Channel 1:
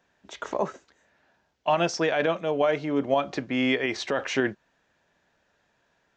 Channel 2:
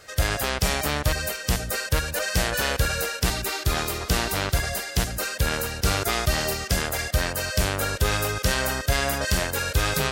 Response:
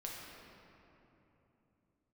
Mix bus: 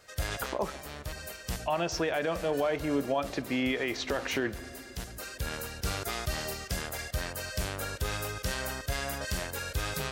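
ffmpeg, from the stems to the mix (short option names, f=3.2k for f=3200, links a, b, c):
-filter_complex "[0:a]volume=-3dB,asplit=3[a][b][c];[b]volume=-15dB[d];[1:a]acontrast=67,volume=-16.5dB,asplit=2[e][f];[f]volume=-21.5dB[g];[c]apad=whole_len=446242[h];[e][h]sidechaincompress=threshold=-31dB:ratio=8:attack=5.1:release=1360[i];[2:a]atrim=start_sample=2205[j];[d][g]amix=inputs=2:normalize=0[k];[k][j]afir=irnorm=-1:irlink=0[l];[a][i][l]amix=inputs=3:normalize=0,alimiter=limit=-19.5dB:level=0:latency=1:release=75"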